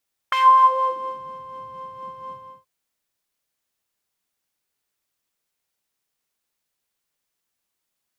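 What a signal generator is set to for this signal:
subtractive patch with filter wobble C6, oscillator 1 triangle, interval 0 semitones, oscillator 2 level −14.5 dB, sub −19 dB, noise −18.5 dB, filter bandpass, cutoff 130 Hz, Q 3, filter envelope 4 octaves, filter decay 0.99 s, filter sustain 5%, attack 4.9 ms, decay 0.23 s, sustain −5.5 dB, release 0.32 s, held 2.01 s, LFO 4.2 Hz, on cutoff 0.4 octaves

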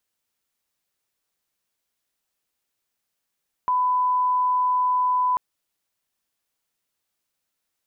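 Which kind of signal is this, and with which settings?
line-up tone −18 dBFS 1.69 s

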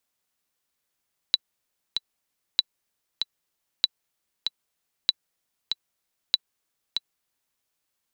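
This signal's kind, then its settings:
click track 96 BPM, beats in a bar 2, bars 5, 3,960 Hz, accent 6.5 dB −5.5 dBFS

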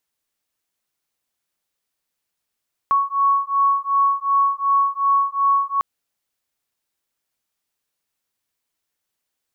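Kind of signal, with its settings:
two tones that beat 1,110 Hz, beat 2.7 Hz, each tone −18.5 dBFS 2.90 s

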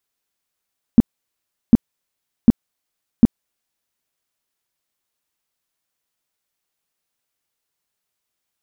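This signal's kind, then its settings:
tone bursts 231 Hz, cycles 5, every 0.75 s, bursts 4, −3 dBFS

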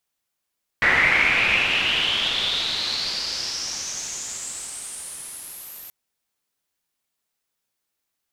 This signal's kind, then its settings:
filter sweep on noise white, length 5.08 s lowpass, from 1,900 Hz, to 13,000 Hz, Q 6.5, exponential, gain ramp −29 dB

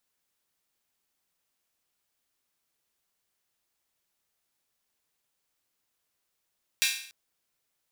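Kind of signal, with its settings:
open synth hi-hat length 0.29 s, high-pass 2,400 Hz, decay 0.56 s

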